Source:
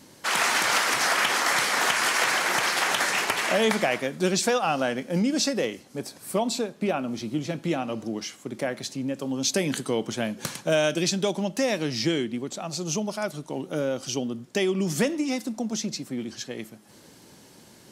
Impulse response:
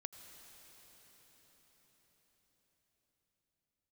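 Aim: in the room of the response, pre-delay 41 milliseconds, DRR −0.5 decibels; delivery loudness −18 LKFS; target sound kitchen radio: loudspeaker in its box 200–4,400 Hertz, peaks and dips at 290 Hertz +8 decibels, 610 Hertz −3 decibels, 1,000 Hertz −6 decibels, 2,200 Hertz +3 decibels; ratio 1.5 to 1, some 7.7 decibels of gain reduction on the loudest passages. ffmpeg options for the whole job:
-filter_complex "[0:a]acompressor=threshold=-41dB:ratio=1.5,asplit=2[link_01][link_02];[1:a]atrim=start_sample=2205,adelay=41[link_03];[link_02][link_03]afir=irnorm=-1:irlink=0,volume=4.5dB[link_04];[link_01][link_04]amix=inputs=2:normalize=0,highpass=200,equalizer=frequency=290:width_type=q:width=4:gain=8,equalizer=frequency=610:width_type=q:width=4:gain=-3,equalizer=frequency=1000:width_type=q:width=4:gain=-6,equalizer=frequency=2200:width_type=q:width=4:gain=3,lowpass=frequency=4400:width=0.5412,lowpass=frequency=4400:width=1.3066,volume=11.5dB"

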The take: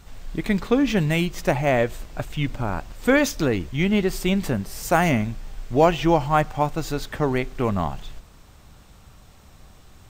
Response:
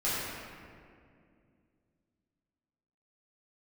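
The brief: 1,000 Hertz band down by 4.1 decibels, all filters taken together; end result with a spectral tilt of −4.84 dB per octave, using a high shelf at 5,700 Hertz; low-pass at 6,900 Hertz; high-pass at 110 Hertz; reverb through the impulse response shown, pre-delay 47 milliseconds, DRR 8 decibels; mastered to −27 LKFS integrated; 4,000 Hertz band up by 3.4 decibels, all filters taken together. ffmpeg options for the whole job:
-filter_complex "[0:a]highpass=110,lowpass=6900,equalizer=frequency=1000:width_type=o:gain=-6,equalizer=frequency=4000:width_type=o:gain=8,highshelf=frequency=5700:gain=-7,asplit=2[link_01][link_02];[1:a]atrim=start_sample=2205,adelay=47[link_03];[link_02][link_03]afir=irnorm=-1:irlink=0,volume=-17.5dB[link_04];[link_01][link_04]amix=inputs=2:normalize=0,volume=-4dB"

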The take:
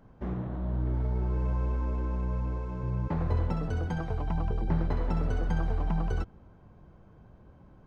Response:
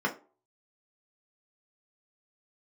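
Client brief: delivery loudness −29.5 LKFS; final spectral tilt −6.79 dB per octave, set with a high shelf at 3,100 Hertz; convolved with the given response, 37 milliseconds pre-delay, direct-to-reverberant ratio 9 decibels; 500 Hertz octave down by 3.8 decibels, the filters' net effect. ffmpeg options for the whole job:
-filter_complex "[0:a]equalizer=frequency=500:width_type=o:gain=-5,highshelf=frequency=3100:gain=7.5,asplit=2[link_01][link_02];[1:a]atrim=start_sample=2205,adelay=37[link_03];[link_02][link_03]afir=irnorm=-1:irlink=0,volume=-19dB[link_04];[link_01][link_04]amix=inputs=2:normalize=0,volume=2.5dB"

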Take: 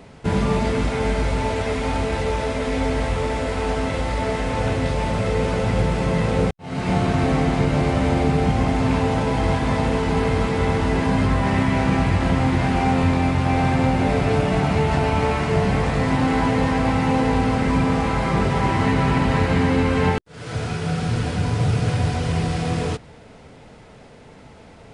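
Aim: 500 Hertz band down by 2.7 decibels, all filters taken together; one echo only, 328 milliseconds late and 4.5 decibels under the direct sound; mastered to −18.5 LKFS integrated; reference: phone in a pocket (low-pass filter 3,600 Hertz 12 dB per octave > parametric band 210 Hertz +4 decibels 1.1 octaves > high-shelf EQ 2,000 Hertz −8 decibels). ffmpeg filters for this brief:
ffmpeg -i in.wav -af "lowpass=3600,equalizer=frequency=210:width_type=o:width=1.1:gain=4,equalizer=frequency=500:width_type=o:gain=-3.5,highshelf=frequency=2000:gain=-8,aecho=1:1:328:0.596,volume=0.5dB" out.wav

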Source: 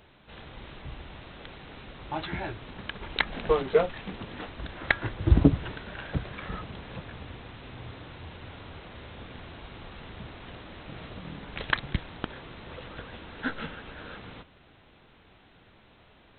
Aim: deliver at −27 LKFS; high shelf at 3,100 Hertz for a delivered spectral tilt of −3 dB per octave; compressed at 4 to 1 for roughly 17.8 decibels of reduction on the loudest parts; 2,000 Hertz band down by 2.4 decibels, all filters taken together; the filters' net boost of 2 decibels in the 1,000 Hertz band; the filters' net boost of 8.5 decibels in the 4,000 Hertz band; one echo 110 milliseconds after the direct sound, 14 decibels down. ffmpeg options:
ffmpeg -i in.wav -af "equalizer=frequency=1000:width_type=o:gain=3.5,equalizer=frequency=2000:width_type=o:gain=-8.5,highshelf=frequency=3100:gain=8.5,equalizer=frequency=4000:width_type=o:gain=7.5,acompressor=threshold=-34dB:ratio=4,aecho=1:1:110:0.2,volume=13dB" out.wav

